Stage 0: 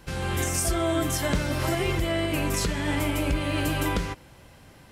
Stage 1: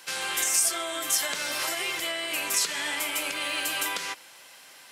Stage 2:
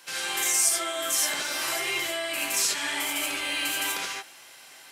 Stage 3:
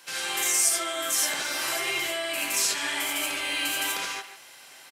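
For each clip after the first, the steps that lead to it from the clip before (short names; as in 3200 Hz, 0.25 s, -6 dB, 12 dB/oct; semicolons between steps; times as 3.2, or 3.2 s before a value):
weighting filter A; compressor, threshold -30 dBFS, peak gain reduction 6 dB; tilt +3.5 dB/oct; gain +1 dB
non-linear reverb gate 0.1 s rising, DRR -3 dB; gain -3.5 dB
speakerphone echo 0.14 s, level -10 dB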